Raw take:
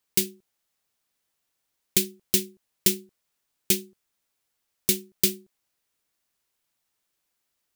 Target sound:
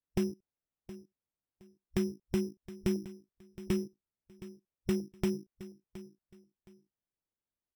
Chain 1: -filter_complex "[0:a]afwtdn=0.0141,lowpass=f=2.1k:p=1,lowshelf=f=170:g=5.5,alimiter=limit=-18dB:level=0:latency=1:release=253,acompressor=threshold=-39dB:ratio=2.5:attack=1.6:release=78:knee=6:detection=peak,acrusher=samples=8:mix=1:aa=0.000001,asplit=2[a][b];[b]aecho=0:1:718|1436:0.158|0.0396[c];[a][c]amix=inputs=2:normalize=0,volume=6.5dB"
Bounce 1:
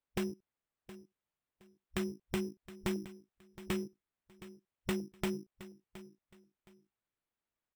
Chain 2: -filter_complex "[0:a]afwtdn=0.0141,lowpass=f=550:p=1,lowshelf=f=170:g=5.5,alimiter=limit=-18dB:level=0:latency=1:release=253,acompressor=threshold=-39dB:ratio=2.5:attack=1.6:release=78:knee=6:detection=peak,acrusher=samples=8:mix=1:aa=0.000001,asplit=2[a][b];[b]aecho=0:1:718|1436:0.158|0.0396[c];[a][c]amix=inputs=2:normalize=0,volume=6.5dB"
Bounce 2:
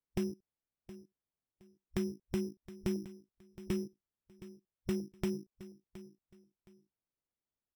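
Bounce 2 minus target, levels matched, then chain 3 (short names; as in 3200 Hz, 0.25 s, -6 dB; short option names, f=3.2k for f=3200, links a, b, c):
compressor: peak gain reduction +4 dB
-filter_complex "[0:a]afwtdn=0.0141,lowpass=f=550:p=1,lowshelf=f=170:g=5.5,alimiter=limit=-18dB:level=0:latency=1:release=253,acompressor=threshold=-32.5dB:ratio=2.5:attack=1.6:release=78:knee=6:detection=peak,acrusher=samples=8:mix=1:aa=0.000001,asplit=2[a][b];[b]aecho=0:1:718|1436:0.158|0.0396[c];[a][c]amix=inputs=2:normalize=0,volume=6.5dB"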